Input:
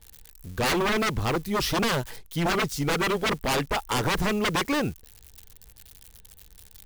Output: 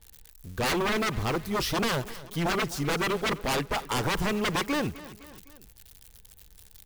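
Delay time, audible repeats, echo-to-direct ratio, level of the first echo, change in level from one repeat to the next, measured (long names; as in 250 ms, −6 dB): 255 ms, 3, −16.0 dB, −17.5 dB, −5.0 dB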